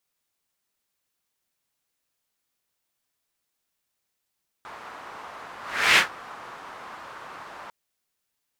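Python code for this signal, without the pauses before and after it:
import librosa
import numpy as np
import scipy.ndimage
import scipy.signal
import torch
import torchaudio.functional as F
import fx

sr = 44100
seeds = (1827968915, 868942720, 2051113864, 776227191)

y = fx.whoosh(sr, seeds[0], length_s=3.05, peak_s=1.32, rise_s=0.4, fall_s=0.14, ends_hz=1100.0, peak_hz=2300.0, q=1.9, swell_db=25)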